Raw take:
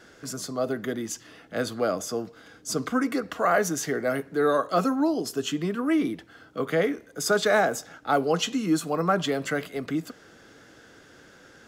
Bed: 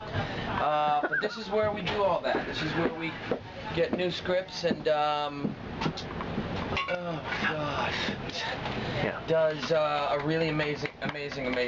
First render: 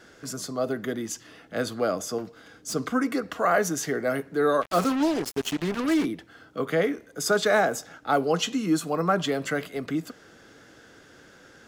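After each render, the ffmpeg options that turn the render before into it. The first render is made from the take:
-filter_complex "[0:a]asettb=1/sr,asplit=3[s0][s1][s2];[s0]atrim=end=2.184[s3];[s1]atrim=start=2.18:end=2.74,asetpts=PTS-STARTPTS,afade=t=in:d=0.004:c=qsin,afade=t=out:st=0.556:d=0.004:c=qsin,asoftclip=type=hard:threshold=0.0376[s4];[s2]atrim=start=2.736[s5];[s3][s4]acrossfade=d=0.004:c1=hsin:c2=qsin[s6];[s6][s5]acrossfade=d=0.004:c1=qsin:c2=hsin,asplit=3[s7][s8][s9];[s7]afade=t=out:st=4.61:d=0.02[s10];[s8]acrusher=bits=4:mix=0:aa=0.5,afade=t=in:st=4.61:d=0.02,afade=t=out:st=6.04:d=0.02[s11];[s9]afade=t=in:st=6.04:d=0.02[s12];[s10][s11][s12]amix=inputs=3:normalize=0"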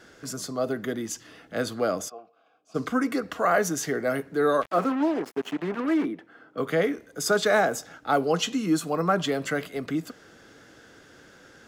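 -filter_complex "[0:a]asplit=3[s0][s1][s2];[s0]afade=t=out:st=2.08:d=0.02[s3];[s1]asplit=3[s4][s5][s6];[s4]bandpass=f=730:t=q:w=8,volume=1[s7];[s5]bandpass=f=1090:t=q:w=8,volume=0.501[s8];[s6]bandpass=f=2440:t=q:w=8,volume=0.355[s9];[s7][s8][s9]amix=inputs=3:normalize=0,afade=t=in:st=2.08:d=0.02,afade=t=out:st=2.74:d=0.02[s10];[s2]afade=t=in:st=2.74:d=0.02[s11];[s3][s10][s11]amix=inputs=3:normalize=0,asettb=1/sr,asplit=3[s12][s13][s14];[s12]atrim=end=4.714[s15];[s13]atrim=start=4.71:end=6.58,asetpts=PTS-STARTPTS,afade=t=in:d=0.004:c=qsin,afade=t=out:st=1.866:d=0.004:c=qsin,acrossover=split=170 2400:gain=0.0891 1 0.178[s16][s17][s18];[s16][s17][s18]amix=inputs=3:normalize=0[s19];[s14]atrim=start=6.576[s20];[s15][s19]acrossfade=d=0.004:c1=hsin:c2=qsin[s21];[s21][s20]acrossfade=d=0.004:c1=qsin:c2=hsin"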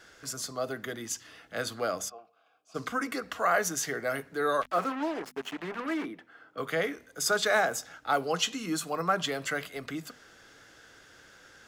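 -af "equalizer=f=260:w=0.46:g=-9.5,bandreject=f=50:t=h:w=6,bandreject=f=100:t=h:w=6,bandreject=f=150:t=h:w=6,bandreject=f=200:t=h:w=6,bandreject=f=250:t=h:w=6"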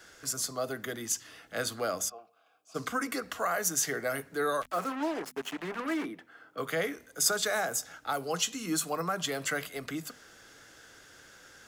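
-filter_complex "[0:a]acrossover=split=150|6400[s0][s1][s2];[s1]alimiter=limit=0.0891:level=0:latency=1:release=309[s3];[s2]acontrast=57[s4];[s0][s3][s4]amix=inputs=3:normalize=0"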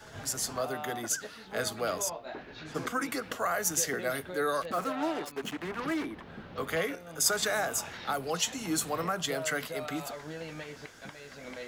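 -filter_complex "[1:a]volume=0.211[s0];[0:a][s0]amix=inputs=2:normalize=0"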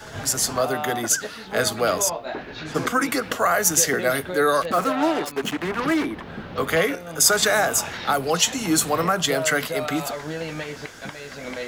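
-af "volume=3.35,alimiter=limit=0.708:level=0:latency=1"

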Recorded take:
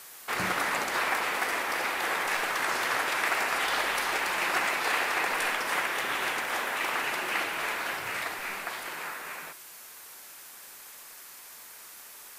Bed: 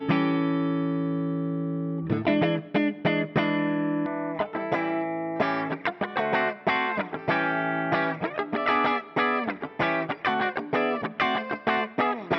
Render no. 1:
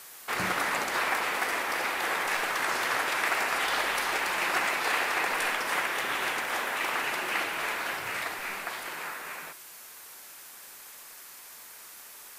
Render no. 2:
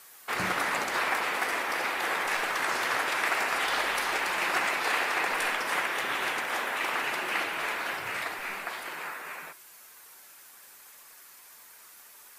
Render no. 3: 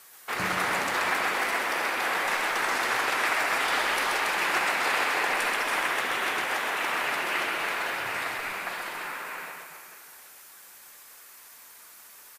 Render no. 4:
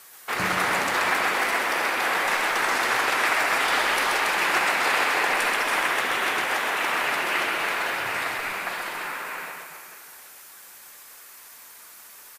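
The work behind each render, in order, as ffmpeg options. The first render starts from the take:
-af anull
-af "afftdn=nr=6:nf=-48"
-af "aecho=1:1:130|279.5|451.4|649.1|876.5:0.631|0.398|0.251|0.158|0.1"
-af "volume=1.5"

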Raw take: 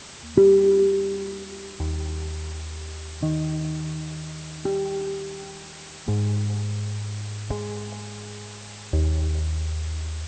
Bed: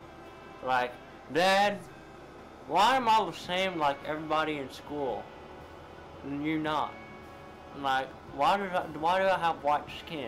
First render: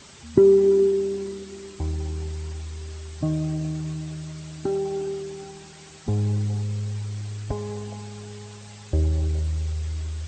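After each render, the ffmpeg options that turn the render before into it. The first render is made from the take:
-af "afftdn=nr=7:nf=-41"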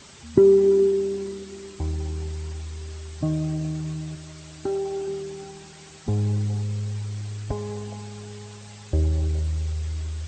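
-filter_complex "[0:a]asettb=1/sr,asplit=3[s0][s1][s2];[s0]atrim=end=4.154[s3];[s1]atrim=start=4.15:end=5.08,asetpts=PTS-STARTPTS,afade=t=in:d=0.004:c=qsin,afade=t=out:st=0.926:d=0.004:c=qsin,equalizer=f=180:t=o:w=0.77:g=-9.5[s4];[s2]atrim=start=5.076[s5];[s3][s4]acrossfade=d=0.004:c1=hsin:c2=qsin[s6];[s6][s5]acrossfade=d=0.004:c1=qsin:c2=hsin"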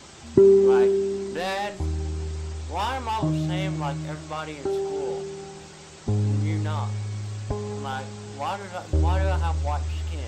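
-filter_complex "[1:a]volume=0.631[s0];[0:a][s0]amix=inputs=2:normalize=0"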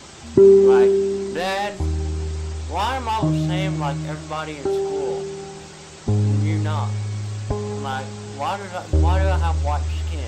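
-af "volume=1.68,alimiter=limit=0.794:level=0:latency=1"

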